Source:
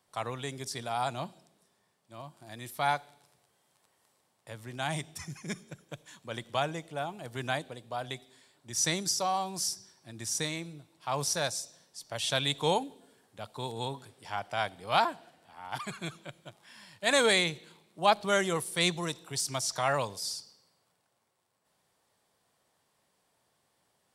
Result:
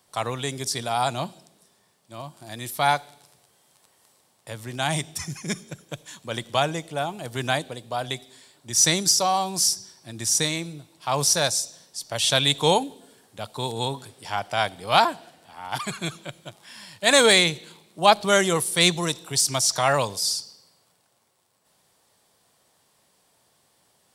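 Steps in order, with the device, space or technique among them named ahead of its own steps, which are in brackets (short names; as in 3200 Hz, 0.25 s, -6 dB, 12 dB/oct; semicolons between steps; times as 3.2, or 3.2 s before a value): exciter from parts (in parallel at -5 dB: HPF 2600 Hz 12 dB/oct + soft clip -22 dBFS, distortion -17 dB); on the sum: gain +8 dB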